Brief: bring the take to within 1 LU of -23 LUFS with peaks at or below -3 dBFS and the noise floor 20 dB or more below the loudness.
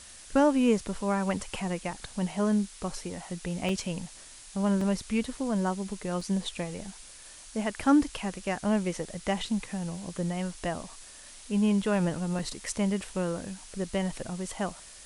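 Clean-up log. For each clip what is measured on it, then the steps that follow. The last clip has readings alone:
dropouts 4; longest dropout 3.1 ms; noise floor -49 dBFS; noise floor target -50 dBFS; loudness -30.0 LUFS; peak level -12.5 dBFS; loudness target -23.0 LUFS
-> interpolate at 3.69/4.81/6.21/12.39 s, 3.1 ms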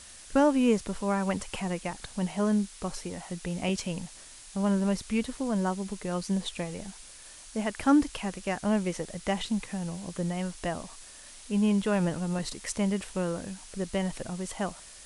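dropouts 0; noise floor -49 dBFS; noise floor target -50 dBFS
-> noise reduction 6 dB, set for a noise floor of -49 dBFS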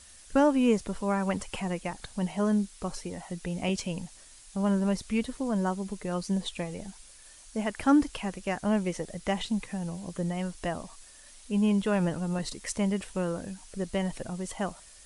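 noise floor -52 dBFS; loudness -30.5 LUFS; peak level -12.5 dBFS; loudness target -23.0 LUFS
-> trim +7.5 dB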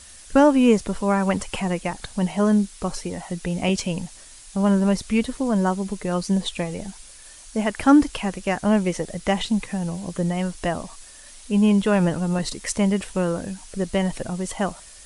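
loudness -23.0 LUFS; peak level -5.0 dBFS; noise floor -45 dBFS

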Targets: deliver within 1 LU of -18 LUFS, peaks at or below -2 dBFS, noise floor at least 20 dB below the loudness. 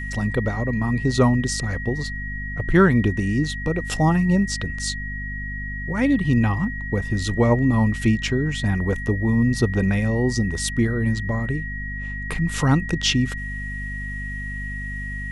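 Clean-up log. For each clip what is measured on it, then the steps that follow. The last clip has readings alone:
hum 50 Hz; highest harmonic 250 Hz; hum level -29 dBFS; steady tone 1.9 kHz; tone level -31 dBFS; loudness -22.5 LUFS; peak level -4.0 dBFS; loudness target -18.0 LUFS
-> de-hum 50 Hz, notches 5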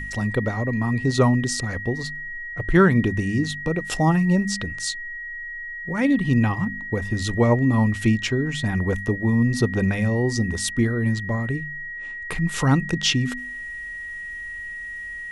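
hum not found; steady tone 1.9 kHz; tone level -31 dBFS
-> band-stop 1.9 kHz, Q 30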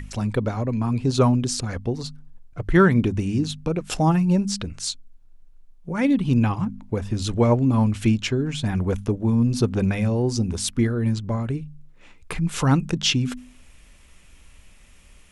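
steady tone not found; loudness -22.5 LUFS; peak level -4.5 dBFS; loudness target -18.0 LUFS
-> trim +4.5 dB; peak limiter -2 dBFS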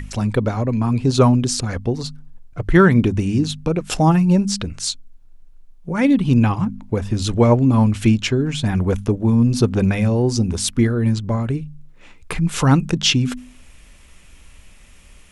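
loudness -18.0 LUFS; peak level -2.0 dBFS; noise floor -46 dBFS

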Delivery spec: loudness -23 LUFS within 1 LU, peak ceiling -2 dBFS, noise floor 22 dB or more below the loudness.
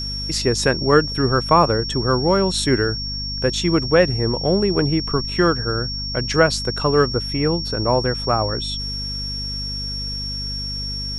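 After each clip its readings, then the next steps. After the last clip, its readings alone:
hum 50 Hz; highest harmonic 250 Hz; hum level -28 dBFS; steady tone 5.5 kHz; tone level -26 dBFS; loudness -19.5 LUFS; peak level -1.5 dBFS; loudness target -23.0 LUFS
-> hum notches 50/100/150/200/250 Hz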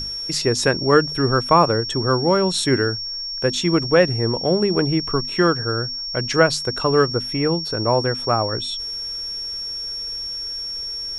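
hum not found; steady tone 5.5 kHz; tone level -26 dBFS
-> band-stop 5.5 kHz, Q 30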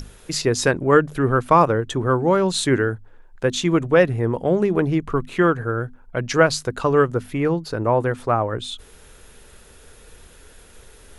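steady tone not found; loudness -20.0 LUFS; peak level -2.0 dBFS; loudness target -23.0 LUFS
-> trim -3 dB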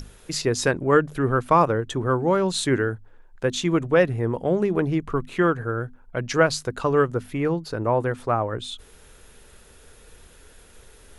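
loudness -23.0 LUFS; peak level -5.0 dBFS; noise floor -51 dBFS

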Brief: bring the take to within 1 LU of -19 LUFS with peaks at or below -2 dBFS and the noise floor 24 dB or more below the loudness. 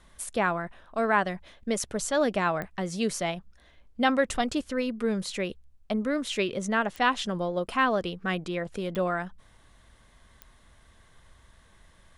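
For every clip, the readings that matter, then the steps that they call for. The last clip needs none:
clicks found 4; loudness -28.5 LUFS; peak level -10.0 dBFS; loudness target -19.0 LUFS
-> de-click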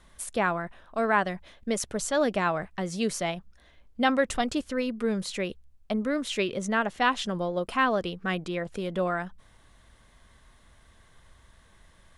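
clicks found 0; loudness -28.5 LUFS; peak level -10.0 dBFS; loudness target -19.0 LUFS
-> trim +9.5 dB; peak limiter -2 dBFS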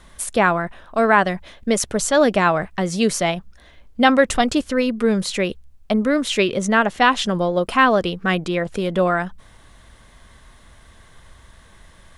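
loudness -19.0 LUFS; peak level -2.0 dBFS; noise floor -49 dBFS

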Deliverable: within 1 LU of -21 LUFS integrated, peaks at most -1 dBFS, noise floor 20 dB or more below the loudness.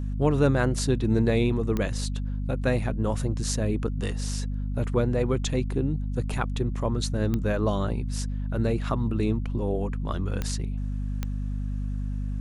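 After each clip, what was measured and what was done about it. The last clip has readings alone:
clicks found 4; hum 50 Hz; highest harmonic 250 Hz; hum level -27 dBFS; loudness -27.5 LUFS; peak level -10.0 dBFS; loudness target -21.0 LUFS
-> de-click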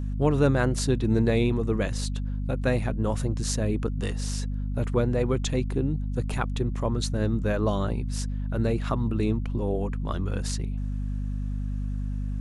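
clicks found 0; hum 50 Hz; highest harmonic 250 Hz; hum level -27 dBFS
-> de-hum 50 Hz, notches 5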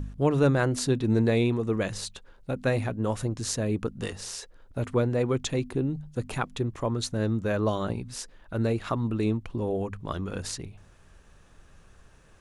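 hum not found; loudness -28.5 LUFS; peak level -11.0 dBFS; loudness target -21.0 LUFS
-> trim +7.5 dB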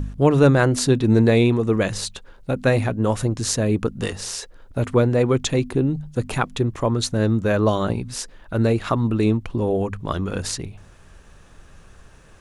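loudness -21.0 LUFS; peak level -3.5 dBFS; noise floor -49 dBFS

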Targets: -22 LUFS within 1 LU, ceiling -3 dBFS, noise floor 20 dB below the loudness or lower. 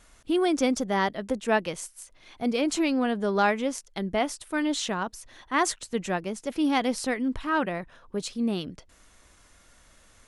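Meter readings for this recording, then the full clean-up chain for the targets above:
loudness -27.5 LUFS; peak level -10.5 dBFS; loudness target -22.0 LUFS
-> trim +5.5 dB

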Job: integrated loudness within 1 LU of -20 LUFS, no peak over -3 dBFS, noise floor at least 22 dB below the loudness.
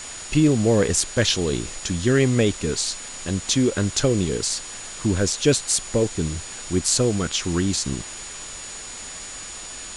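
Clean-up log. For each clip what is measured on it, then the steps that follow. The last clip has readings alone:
steady tone 6.9 kHz; tone level -37 dBFS; noise floor -36 dBFS; noise floor target -44 dBFS; loudness -22.0 LUFS; peak level -1.5 dBFS; loudness target -20.0 LUFS
-> band-stop 6.9 kHz, Q 30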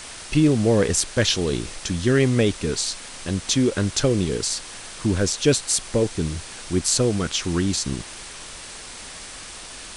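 steady tone not found; noise floor -38 dBFS; noise floor target -44 dBFS
-> noise reduction 6 dB, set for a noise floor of -38 dBFS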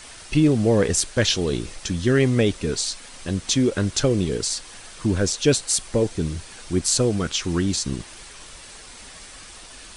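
noise floor -43 dBFS; noise floor target -44 dBFS
-> noise reduction 6 dB, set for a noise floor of -43 dBFS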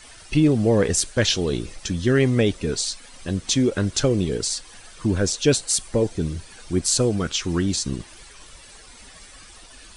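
noise floor -46 dBFS; loudness -22.0 LUFS; peak level -2.0 dBFS; loudness target -20.0 LUFS
-> trim +2 dB; peak limiter -3 dBFS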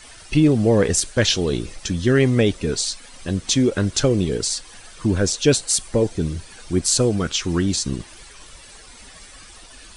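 loudness -20.0 LUFS; peak level -3.0 dBFS; noise floor -44 dBFS

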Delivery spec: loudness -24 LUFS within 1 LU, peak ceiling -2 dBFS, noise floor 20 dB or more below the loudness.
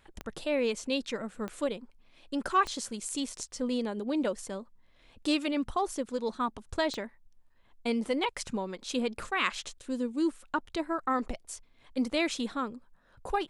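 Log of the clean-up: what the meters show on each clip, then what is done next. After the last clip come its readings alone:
clicks found 4; loudness -32.5 LUFS; peak level -12.5 dBFS; loudness target -24.0 LUFS
-> de-click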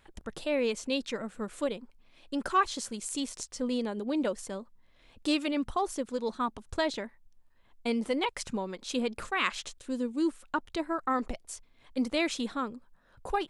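clicks found 0; loudness -32.5 LUFS; peak level -12.5 dBFS; loudness target -24.0 LUFS
-> trim +8.5 dB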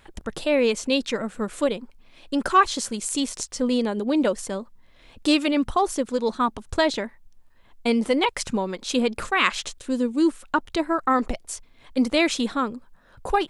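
loudness -24.0 LUFS; peak level -4.0 dBFS; noise floor -54 dBFS

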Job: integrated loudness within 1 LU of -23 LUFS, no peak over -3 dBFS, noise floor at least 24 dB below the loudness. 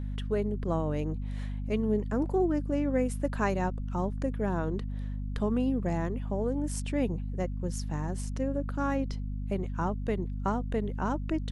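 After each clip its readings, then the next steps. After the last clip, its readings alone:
hum 50 Hz; highest harmonic 250 Hz; hum level -32 dBFS; loudness -31.5 LUFS; peak level -15.5 dBFS; loudness target -23.0 LUFS
-> hum notches 50/100/150/200/250 Hz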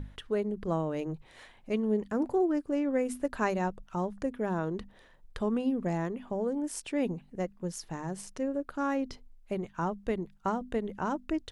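hum not found; loudness -33.0 LUFS; peak level -17.0 dBFS; loudness target -23.0 LUFS
-> trim +10 dB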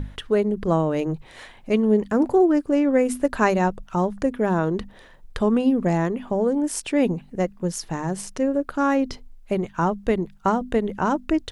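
loudness -23.0 LUFS; peak level -7.0 dBFS; noise floor -48 dBFS

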